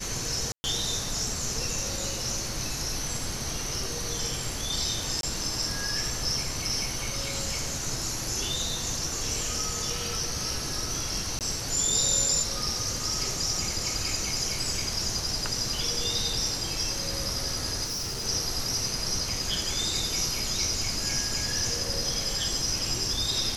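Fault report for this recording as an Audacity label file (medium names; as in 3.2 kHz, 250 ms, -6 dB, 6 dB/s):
0.520000	0.640000	dropout 120 ms
5.210000	5.230000	dropout 22 ms
11.390000	11.410000	dropout 18 ms
17.840000	18.260000	clipped -29 dBFS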